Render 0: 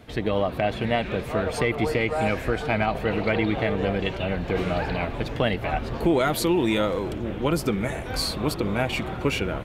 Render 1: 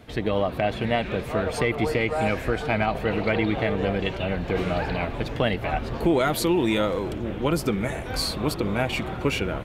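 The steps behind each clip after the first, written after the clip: no audible change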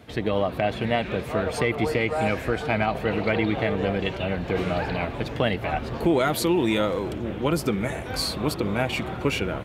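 high-pass 59 Hz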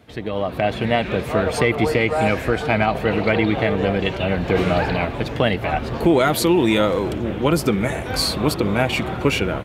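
level rider gain up to 11.5 dB; trim -2.5 dB

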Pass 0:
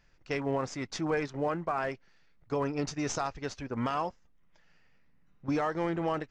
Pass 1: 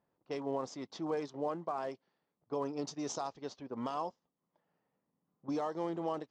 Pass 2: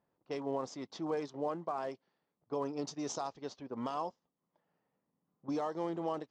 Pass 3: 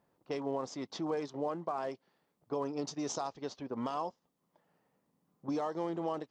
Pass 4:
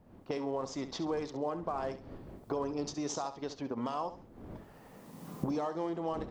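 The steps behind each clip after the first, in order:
level-controlled noise filter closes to 1.4 kHz, open at -26.5 dBFS; high-pass 210 Hz 12 dB/octave; high-order bell 1.9 kHz -10.5 dB 1.2 oct; trim -4.5 dB
no audible change
compression 1.5:1, threshold -48 dBFS, peak gain reduction 6.5 dB; trim +6.5 dB
recorder AGC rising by 25 dB/s; wind noise 340 Hz -53 dBFS; flutter echo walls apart 11.6 m, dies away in 0.34 s

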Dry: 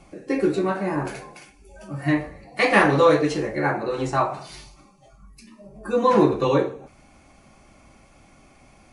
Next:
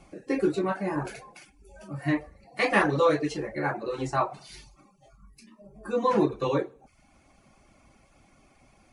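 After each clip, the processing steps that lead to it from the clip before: reverb removal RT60 0.54 s; gain riding within 3 dB 2 s; trim -6 dB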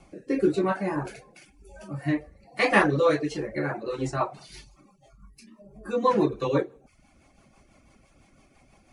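rotary cabinet horn 1 Hz, later 6 Hz, at 2.65 s; trim +3 dB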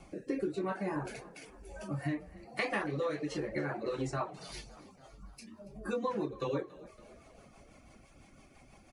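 compression 6:1, threshold -32 dBFS, peak gain reduction 16.5 dB; frequency-shifting echo 281 ms, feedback 62%, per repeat +42 Hz, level -20 dB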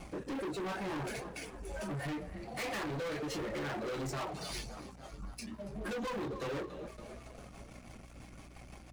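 waveshaping leveller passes 2; hum 60 Hz, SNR 24 dB; saturation -37.5 dBFS, distortion -6 dB; trim +1.5 dB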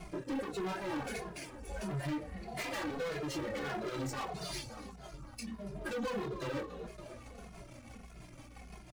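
endless flanger 2.4 ms -1.6 Hz; trim +3 dB

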